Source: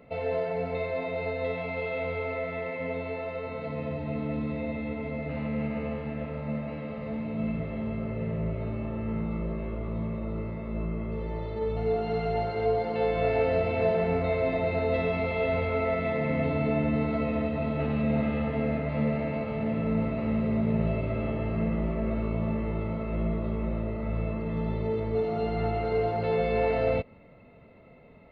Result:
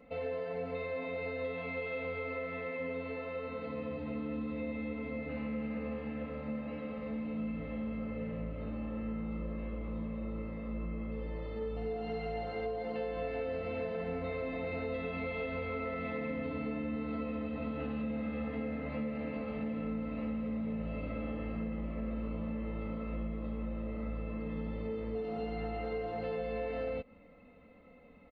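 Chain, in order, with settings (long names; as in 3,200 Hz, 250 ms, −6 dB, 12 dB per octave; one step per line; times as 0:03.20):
comb filter 3.9 ms, depth 74%
downward compressor, threshold −27 dBFS, peak gain reduction 8 dB
level −6.5 dB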